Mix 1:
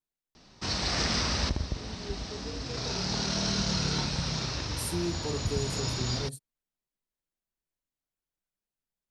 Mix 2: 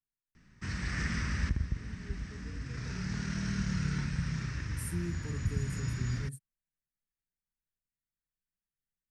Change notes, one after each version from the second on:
master: add EQ curve 170 Hz 0 dB, 730 Hz -21 dB, 1800 Hz +1 dB, 4100 Hz -21 dB, 8200 Hz -6 dB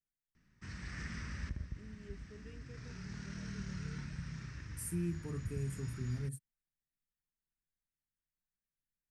background -10.0 dB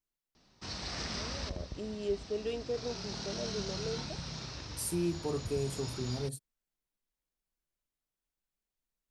first voice +8.5 dB; master: remove EQ curve 170 Hz 0 dB, 730 Hz -21 dB, 1800 Hz +1 dB, 4100 Hz -21 dB, 8200 Hz -6 dB

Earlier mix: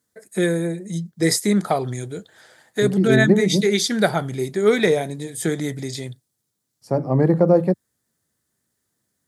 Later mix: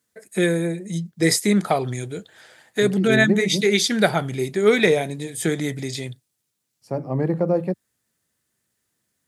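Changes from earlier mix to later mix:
second voice -5.5 dB; master: add bell 2600 Hz +7 dB 0.59 oct

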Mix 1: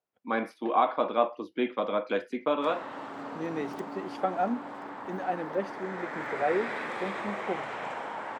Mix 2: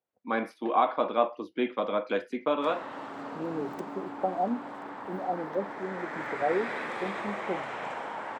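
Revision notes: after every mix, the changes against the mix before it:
second voice: add steep low-pass 920 Hz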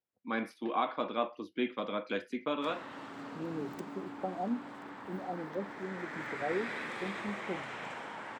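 master: add bell 700 Hz -9 dB 2.1 oct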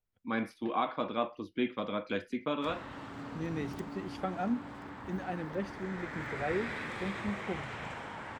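second voice: remove steep low-pass 920 Hz; master: remove HPF 220 Hz 12 dB/oct

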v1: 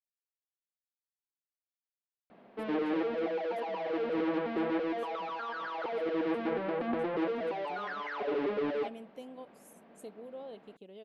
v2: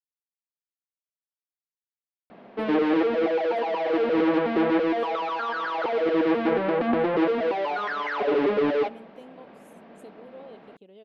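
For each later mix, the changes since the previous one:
speech: add high shelf 5800 Hz -6 dB; background +9.5 dB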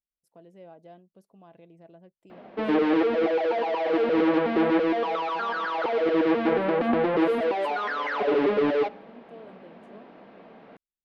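speech: entry -2.35 s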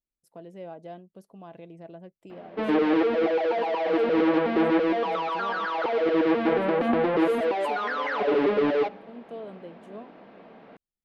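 speech +7.5 dB

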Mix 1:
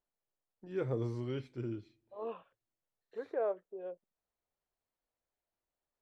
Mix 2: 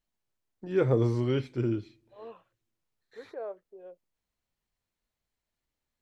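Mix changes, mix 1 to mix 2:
first voice +10.5 dB; second voice -4.5 dB

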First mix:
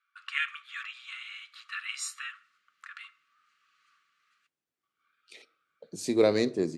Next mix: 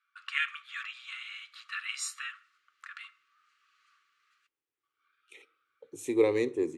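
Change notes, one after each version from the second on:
second voice: add fixed phaser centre 970 Hz, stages 8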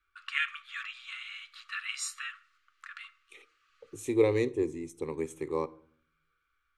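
second voice: entry -2.00 s; master: remove HPF 180 Hz 12 dB/oct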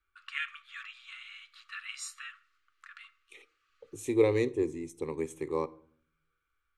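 first voice -5.0 dB

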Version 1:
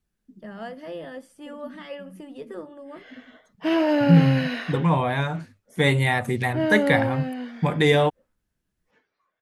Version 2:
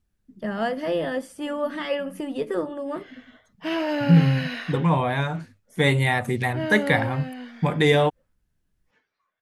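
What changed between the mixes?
first voice +10.5 dB; background: add bell 380 Hz -6 dB 2.5 oct

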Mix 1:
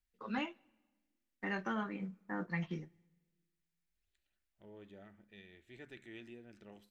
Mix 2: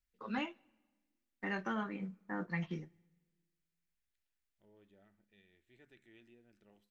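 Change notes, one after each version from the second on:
second voice -11.0 dB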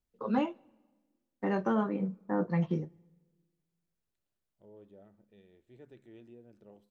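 master: add graphic EQ 125/250/500/1000/2000 Hz +11/+5/+12/+6/-6 dB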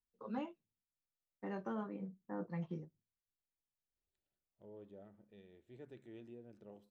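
first voice -12.0 dB; reverb: off

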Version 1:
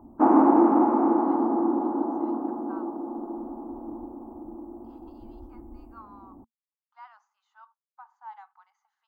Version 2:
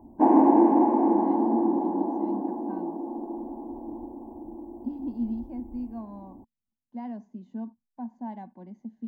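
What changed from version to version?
speech: remove Chebyshev high-pass 820 Hz, order 6; master: add Butterworth band-stop 1300 Hz, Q 2.2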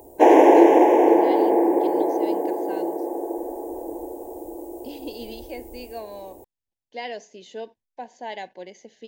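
master: remove EQ curve 140 Hz 0 dB, 230 Hz +14 dB, 460 Hz -20 dB, 840 Hz -5 dB, 1200 Hz -2 dB, 1800 Hz -21 dB, 3000 Hz -30 dB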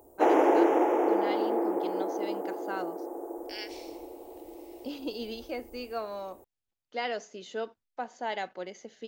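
second voice: unmuted; background -10.0 dB; master: remove Butterworth band-stop 1300 Hz, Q 2.2

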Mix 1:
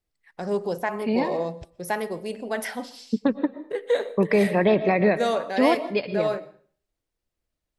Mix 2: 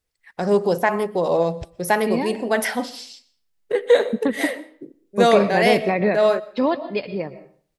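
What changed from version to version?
first voice +8.0 dB; second voice: entry +1.00 s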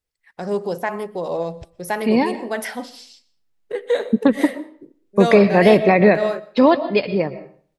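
first voice -5.0 dB; second voice +7.0 dB

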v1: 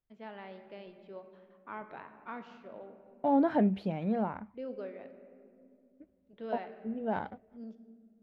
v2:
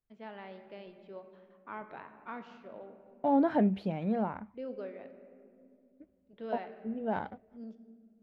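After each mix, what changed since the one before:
none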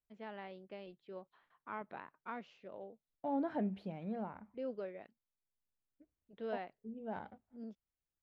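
second voice -10.0 dB; reverb: off

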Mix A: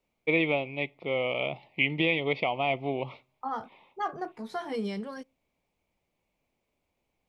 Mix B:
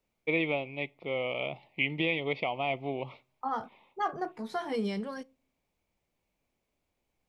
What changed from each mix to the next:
first voice -3.5 dB; second voice: send +9.5 dB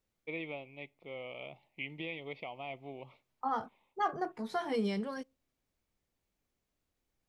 first voice -11.5 dB; second voice: send -10.5 dB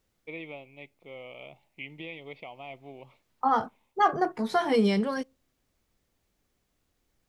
second voice +9.5 dB

